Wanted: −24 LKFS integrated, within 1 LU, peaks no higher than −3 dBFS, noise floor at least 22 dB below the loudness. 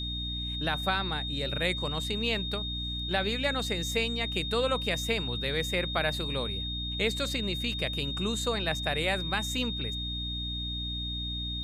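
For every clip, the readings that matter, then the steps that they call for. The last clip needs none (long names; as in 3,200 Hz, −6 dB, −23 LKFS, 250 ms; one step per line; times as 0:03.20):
mains hum 60 Hz; hum harmonics up to 300 Hz; level of the hum −35 dBFS; interfering tone 3,700 Hz; level of the tone −34 dBFS; integrated loudness −30.0 LKFS; sample peak −13.5 dBFS; target loudness −24.0 LKFS
→ hum removal 60 Hz, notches 5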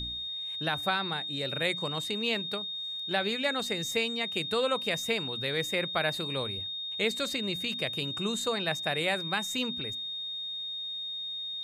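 mains hum none found; interfering tone 3,700 Hz; level of the tone −34 dBFS
→ notch filter 3,700 Hz, Q 30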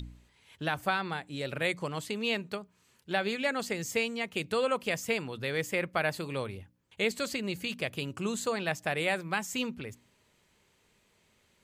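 interfering tone none found; integrated loudness −32.5 LKFS; sample peak −15.0 dBFS; target loudness −24.0 LKFS
→ level +8.5 dB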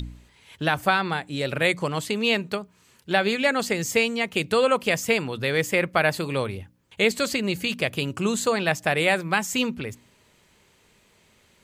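integrated loudness −24.0 LKFS; sample peak −6.5 dBFS; background noise floor −61 dBFS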